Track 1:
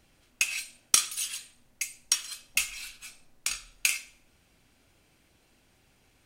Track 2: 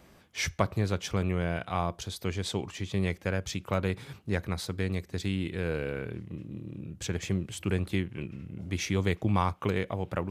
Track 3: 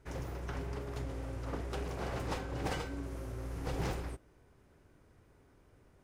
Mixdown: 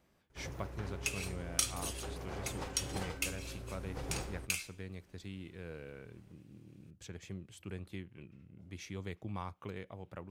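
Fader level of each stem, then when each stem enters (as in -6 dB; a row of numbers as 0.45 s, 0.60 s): -10.0 dB, -15.0 dB, -5.0 dB; 0.65 s, 0.00 s, 0.30 s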